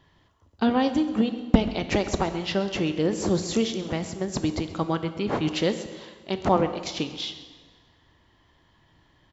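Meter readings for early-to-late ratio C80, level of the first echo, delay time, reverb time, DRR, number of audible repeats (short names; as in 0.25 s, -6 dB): 11.5 dB, -17.5 dB, 0.133 s, 1.5 s, 9.0 dB, 1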